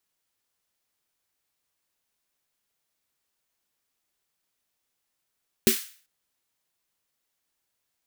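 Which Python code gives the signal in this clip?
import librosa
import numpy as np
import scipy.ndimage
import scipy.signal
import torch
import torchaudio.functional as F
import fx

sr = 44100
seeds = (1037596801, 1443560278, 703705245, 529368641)

y = fx.drum_snare(sr, seeds[0], length_s=0.39, hz=230.0, second_hz=380.0, noise_db=-4.5, noise_from_hz=1600.0, decay_s=0.13, noise_decay_s=0.44)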